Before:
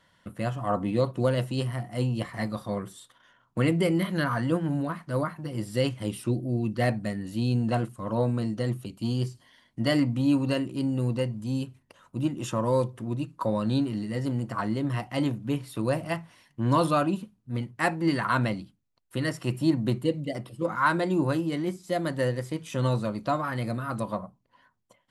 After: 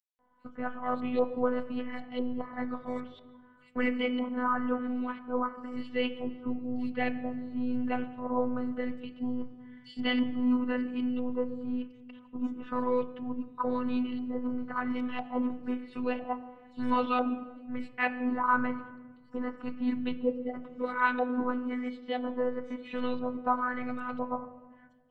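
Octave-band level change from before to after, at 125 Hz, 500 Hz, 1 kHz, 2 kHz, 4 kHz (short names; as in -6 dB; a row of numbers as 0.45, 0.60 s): -23.5, -4.5, -1.0, -2.0, -6.0 dB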